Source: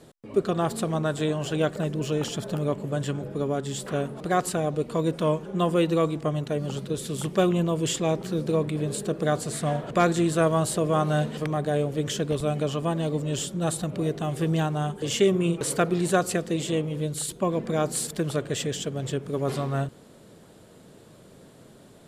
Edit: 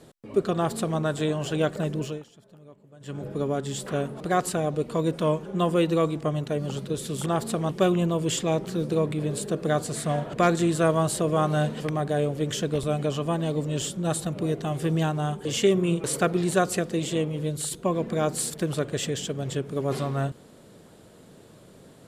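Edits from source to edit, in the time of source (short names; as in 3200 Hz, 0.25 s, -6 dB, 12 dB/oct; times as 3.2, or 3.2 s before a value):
0.55–0.98 copy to 7.26
1.98–3.26 dip -23 dB, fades 0.26 s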